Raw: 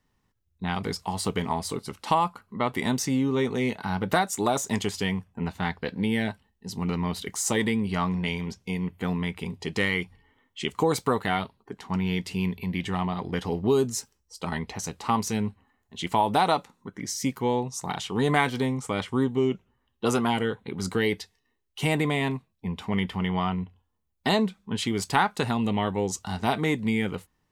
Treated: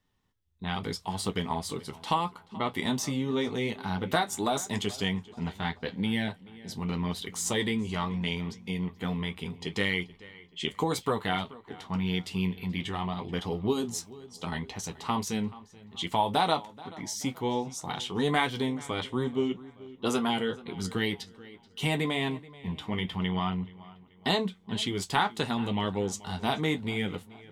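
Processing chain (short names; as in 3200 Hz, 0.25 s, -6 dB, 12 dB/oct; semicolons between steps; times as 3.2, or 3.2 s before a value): bell 3400 Hz +7 dB 0.38 oct; darkening echo 0.431 s, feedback 45%, low-pass 4500 Hz, level -19.5 dB; flange 0.81 Hz, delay 9.8 ms, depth 3.8 ms, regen -45%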